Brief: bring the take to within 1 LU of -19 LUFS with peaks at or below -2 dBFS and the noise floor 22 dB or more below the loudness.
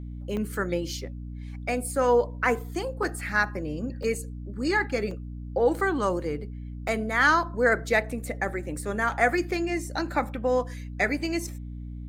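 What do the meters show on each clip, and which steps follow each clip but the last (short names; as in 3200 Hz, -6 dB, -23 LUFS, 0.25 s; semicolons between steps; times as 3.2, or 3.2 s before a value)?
dropouts 6; longest dropout 3.0 ms; hum 60 Hz; harmonics up to 300 Hz; hum level -34 dBFS; loudness -27.0 LUFS; peak -8.0 dBFS; loudness target -19.0 LUFS
-> interpolate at 0.37/3.03/4.03/5.11/6.88/8.11, 3 ms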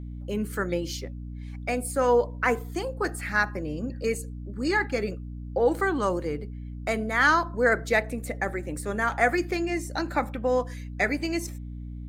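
dropouts 0; hum 60 Hz; harmonics up to 300 Hz; hum level -34 dBFS
-> de-hum 60 Hz, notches 5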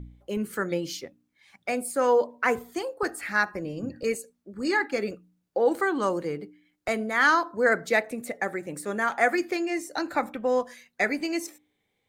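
hum none; loudness -27.0 LUFS; peak -8.5 dBFS; loudness target -19.0 LUFS
-> gain +8 dB; limiter -2 dBFS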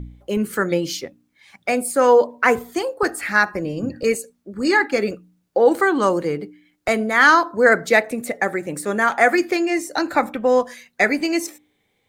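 loudness -19.0 LUFS; peak -2.0 dBFS; noise floor -68 dBFS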